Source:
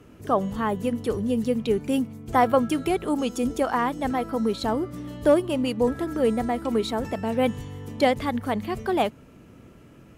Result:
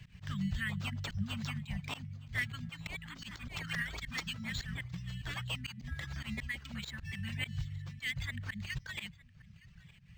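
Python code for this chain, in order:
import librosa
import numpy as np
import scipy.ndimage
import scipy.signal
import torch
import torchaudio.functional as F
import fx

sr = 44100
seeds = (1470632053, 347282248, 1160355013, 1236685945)

y = fx.reverse_delay(x, sr, ms=555, wet_db=-1.0, at=(2.67, 4.81))
y = fx.dereverb_blind(y, sr, rt60_s=1.1)
y = scipy.signal.sosfilt(scipy.signal.cheby1(4, 1.0, [170.0, 1800.0], 'bandstop', fs=sr, output='sos'), y)
y = fx.rider(y, sr, range_db=4, speed_s=0.5)
y = fx.auto_swell(y, sr, attack_ms=105.0)
y = y + 10.0 ** (-22.5 / 20.0) * np.pad(y, (int(914 * sr / 1000.0), 0))[:len(y)]
y = np.interp(np.arange(len(y)), np.arange(len(y))[::4], y[::4])
y = F.gain(torch.from_numpy(y), 2.0).numpy()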